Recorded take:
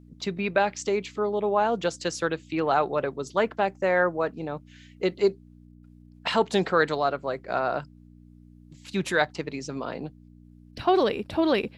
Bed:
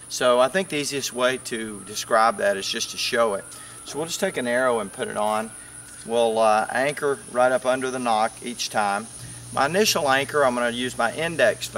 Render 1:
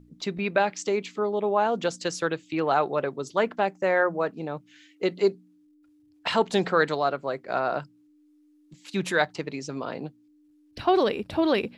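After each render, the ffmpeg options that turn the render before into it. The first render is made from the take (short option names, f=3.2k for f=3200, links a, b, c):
-af "bandreject=f=60:t=h:w=4,bandreject=f=120:t=h:w=4,bandreject=f=180:t=h:w=4,bandreject=f=240:t=h:w=4"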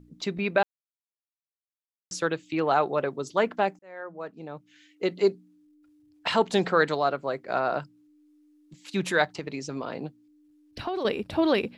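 -filter_complex "[0:a]asettb=1/sr,asplit=3[a][b][c];[a]atrim=end=9.384[d];[b]atrim=start=9.38:end=11.05,asetpts=PTS-STARTPTS,afade=t=in:d=0.004:c=qsin,afade=t=out:st=1.666:d=0.004:c=qsin,acompressor=threshold=-27dB:ratio=6:attack=3.2:release=140:knee=1:detection=peak[e];[c]atrim=start=11.046[f];[d][e]acrossfade=d=0.004:c1=hsin:c2=qsin[g];[g][f]acrossfade=d=0.004:c1=qsin:c2=hsin,asplit=4[h][i][j][k];[h]atrim=end=0.63,asetpts=PTS-STARTPTS,afade=t=out:st=0.626:d=0.004:c=hsin[l];[i]atrim=start=0.63:end=2.11,asetpts=PTS-STARTPTS,volume=0[m];[j]atrim=start=2.11:end=3.79,asetpts=PTS-STARTPTS,afade=t=in:d=0.004:c=hsin,afade=t=out:st=1.676:d=0.004:c=hsin[n];[k]atrim=start=3.79,asetpts=PTS-STARTPTS,afade=t=in:d=1.48[o];[l][m][n][o]concat=n=4:v=0:a=1"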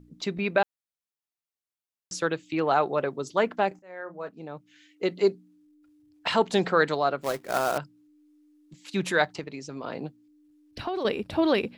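-filter_complex "[0:a]asettb=1/sr,asplit=3[a][b][c];[a]atrim=end=3.684[d];[b]atrim=start=3.68:end=4.29,asetpts=PTS-STARTPTS,afade=t=in:d=0.004:c=qsin,afade=t=out:st=0.606:d=0.004:c=qsin,asplit=2[e][f];[f]adelay=33,volume=-9.5dB[g];[e][g]amix=inputs=2:normalize=0,atrim=end_sample=26901[h];[c]atrim=start=4.286[i];[d][h]acrossfade=d=0.004:c1=hsin:c2=qsin[j];[j][i]acrossfade=d=0.004:c1=qsin:c2=hsin,asettb=1/sr,asplit=3[k][l][m];[k]atrim=end=7.214[n];[l]atrim=start=7.21:end=7.78,asetpts=PTS-STARTPTS,afade=t=in:d=0.004:c=qsin,afade=t=out:st=0.566:d=0.004:c=qsin,acrusher=bits=2:mode=log:mix=0:aa=0.000001[o];[m]atrim=start=7.776[p];[n][o]acrossfade=d=0.004:c1=hsin:c2=qsin[q];[q][p]acrossfade=d=0.004:c1=qsin:c2=hsin,asplit=3[r][s][t];[r]atrim=end=9.442[u];[s]atrim=start=9.438:end=9.842,asetpts=PTS-STARTPTS,volume=-4dB[v];[t]atrim=start=9.838[w];[u][v]acrossfade=d=0.004:c1=hsin:c2=hsin[x];[x][w]acrossfade=d=0.004:c1=hsin:c2=hsin"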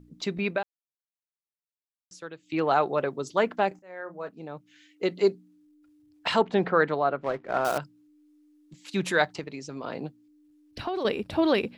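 -filter_complex "[0:a]asettb=1/sr,asplit=3[a][b][c];[a]atrim=end=6.414[d];[b]atrim=start=6.41:end=7.65,asetpts=PTS-STARTPTS,afade=t=in:d=0.004:c=qsin,afade=t=out:st=1.236:d=0.004:c=qsin,lowpass=2.2k[e];[c]atrim=start=7.646[f];[d][e]acrossfade=d=0.004:c1=hsin:c2=qsin[g];[g][f]acrossfade=d=0.004:c1=qsin:c2=hsin,asplit=3[h][i][j];[h]atrim=end=0.69,asetpts=PTS-STARTPTS,afade=t=out:st=0.51:d=0.18:c=qua:silence=0.211349[k];[i]atrim=start=0.69:end=2.37,asetpts=PTS-STARTPTS,volume=-13.5dB[l];[j]atrim=start=2.37,asetpts=PTS-STARTPTS,afade=t=in:d=0.18:c=qua:silence=0.211349[m];[k][l][m]concat=n=3:v=0:a=1"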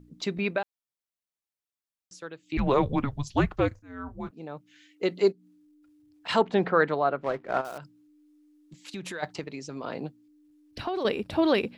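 -filter_complex "[0:a]asettb=1/sr,asplit=3[a][b][c];[a]atrim=end=2.574[d];[b]atrim=start=2.57:end=4.31,asetpts=PTS-STARTPTS,afade=t=in:d=0.004:c=qsin,afade=t=out:st=1.736:d=0.004:c=qsin,afreqshift=-280[e];[c]atrim=start=4.306[f];[d][e]acrossfade=d=0.004:c1=hsin:c2=qsin[g];[g][f]acrossfade=d=0.004:c1=qsin:c2=hsin,asplit=3[h][i][j];[h]afade=t=out:st=5.31:d=0.02[k];[i]acompressor=threshold=-52dB:ratio=2:attack=3.2:release=140:knee=1:detection=peak,afade=t=in:st=5.31:d=0.02,afade=t=out:st=6.28:d=0.02[l];[j]afade=t=in:st=6.28:d=0.02[m];[k][l][m]amix=inputs=3:normalize=0,asplit=3[n][o][p];[n]afade=t=out:st=7.6:d=0.02[q];[o]acompressor=threshold=-34dB:ratio=5:attack=3.2:release=140:knee=1:detection=peak,afade=t=in:st=7.6:d=0.02,afade=t=out:st=9.22:d=0.02[r];[p]afade=t=in:st=9.22:d=0.02[s];[q][r][s]amix=inputs=3:normalize=0"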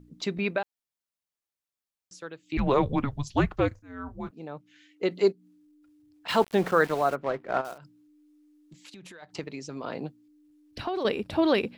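-filter_complex "[0:a]asettb=1/sr,asplit=3[a][b][c];[a]atrim=end=4.504[d];[b]atrim=start=4.5:end=5.11,asetpts=PTS-STARTPTS,afade=t=in:d=0.004:c=qsin,afade=t=out:st=0.606:d=0.004:c=qsin,highshelf=f=5.2k:g=-5.5[e];[c]atrim=start=5.106[f];[d][e]acrossfade=d=0.004:c1=hsin:c2=qsin[g];[g][f]acrossfade=d=0.004:c1=qsin:c2=hsin,asplit=3[h][i][j];[h]afade=t=out:st=6.28:d=0.02[k];[i]aeval=exprs='val(0)*gte(abs(val(0)),0.015)':c=same,afade=t=in:st=6.28:d=0.02,afade=t=out:st=7.14:d=0.02[l];[j]afade=t=in:st=7.14:d=0.02[m];[k][l][m]amix=inputs=3:normalize=0,asettb=1/sr,asplit=3[n][o][p];[n]atrim=end=7.734[q];[o]atrim=start=7.73:end=9.33,asetpts=PTS-STARTPTS,afade=t=in:d=0.004:c=qsin,afade=t=out:st=1.596:d=0.004:c=qsin,acompressor=threshold=-45dB:ratio=4:attack=3.2:release=140:knee=1:detection=peak[r];[p]atrim=start=9.326[s];[q][r]acrossfade=d=0.004:c1=hsin:c2=qsin[t];[t][s]acrossfade=d=0.004:c1=qsin:c2=hsin"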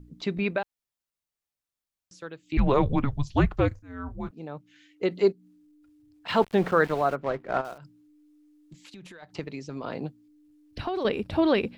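-filter_complex "[0:a]lowshelf=f=110:g=9.5,acrossover=split=4600[a][b];[b]acompressor=threshold=-53dB:ratio=4:attack=1:release=60[c];[a][c]amix=inputs=2:normalize=0"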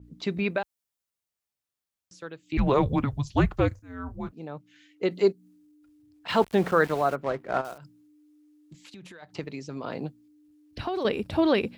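-af "highpass=45,adynamicequalizer=threshold=0.00398:dfrequency=5500:dqfactor=0.7:tfrequency=5500:tqfactor=0.7:attack=5:release=100:ratio=0.375:range=3:mode=boostabove:tftype=highshelf"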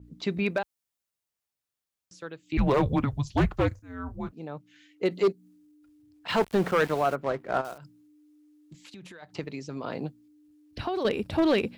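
-af "asoftclip=type=hard:threshold=-17dB"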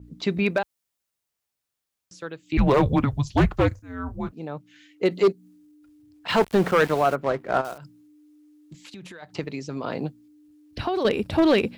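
-af "volume=4.5dB"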